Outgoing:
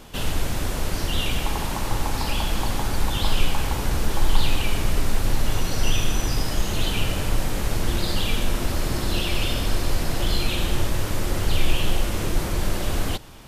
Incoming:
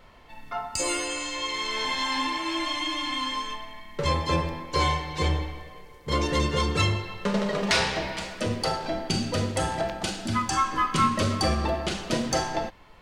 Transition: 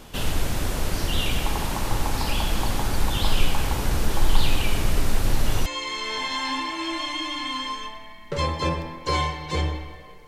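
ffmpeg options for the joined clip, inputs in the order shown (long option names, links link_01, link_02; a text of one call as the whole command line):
ffmpeg -i cue0.wav -i cue1.wav -filter_complex "[0:a]apad=whole_dur=10.27,atrim=end=10.27,atrim=end=5.662[link_01];[1:a]atrim=start=1.328:end=5.94[link_02];[link_01][link_02]acrossfade=duration=0.004:curve1=hsin:curve2=hsin" out.wav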